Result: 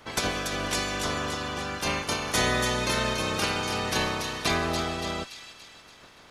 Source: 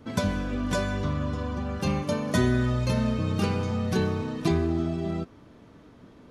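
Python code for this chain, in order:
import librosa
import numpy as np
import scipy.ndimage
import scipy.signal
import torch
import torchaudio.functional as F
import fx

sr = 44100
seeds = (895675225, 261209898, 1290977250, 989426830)

y = fx.spec_clip(x, sr, under_db=24)
y = fx.echo_wet_highpass(y, sr, ms=286, feedback_pct=52, hz=3000.0, wet_db=-4.5)
y = y * librosa.db_to_amplitude(-2.0)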